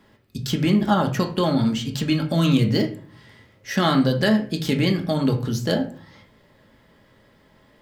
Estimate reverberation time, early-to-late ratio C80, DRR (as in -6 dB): 0.45 s, 16.0 dB, 1.5 dB